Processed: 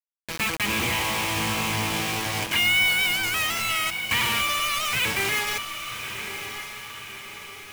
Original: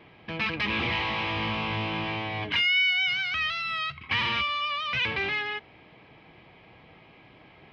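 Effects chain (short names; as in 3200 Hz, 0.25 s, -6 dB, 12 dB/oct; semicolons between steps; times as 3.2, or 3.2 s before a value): bit-crush 5-bit; diffused feedback echo 1.112 s, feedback 50%, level -9 dB; gain +2 dB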